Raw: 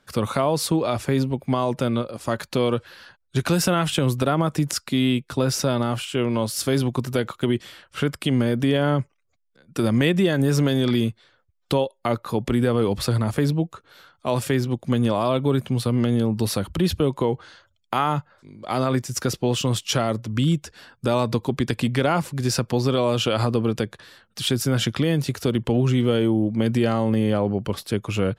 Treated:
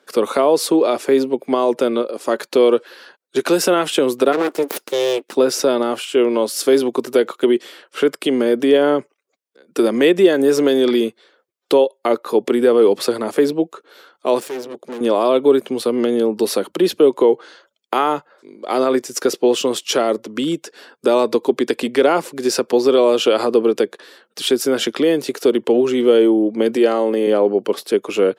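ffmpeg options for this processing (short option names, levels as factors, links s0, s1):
-filter_complex "[0:a]asplit=3[s0][s1][s2];[s0]afade=t=out:st=4.32:d=0.02[s3];[s1]aeval=exprs='abs(val(0))':c=same,afade=t=in:st=4.32:d=0.02,afade=t=out:st=5.34:d=0.02[s4];[s2]afade=t=in:st=5.34:d=0.02[s5];[s3][s4][s5]amix=inputs=3:normalize=0,asettb=1/sr,asplit=3[s6][s7][s8];[s6]atrim=end=14.404[s9];[s7]atrim=start=14.4:end=15.01,asetpts=PTS-STARTPTS,afade=t=in:d=0.004:c=qsin,afade=t=out:st=0.606:d=0.004:c=qsin,aeval=exprs='(tanh(35.5*val(0)+0.8)-tanh(0.8))/35.5':c=same[s10];[s8]atrim=start=15.006[s11];[s9][s10]acrossfade=d=0.004:c1=hsin:c2=qsin[s12];[s12][s11]acrossfade=d=0.004:c1=qsin:c2=hsin,asettb=1/sr,asplit=3[s13][s14][s15];[s13]atrim=end=26.764[s16];[s14]atrim=start=26.76:end=27.27,asetpts=PTS-STARTPTS,afade=t=in:d=0.004:c=qsin,afade=t=out:st=0.506:d=0.004:c=qsin,highpass=230[s17];[s15]atrim=start=27.266[s18];[s16][s17]acrossfade=d=0.004:c1=hsin:c2=qsin[s19];[s19][s18]acrossfade=d=0.004:c1=qsin:c2=hsin,highpass=f=260:w=0.5412,highpass=f=260:w=1.3066,equalizer=f=420:t=o:w=0.83:g=9,volume=1.5"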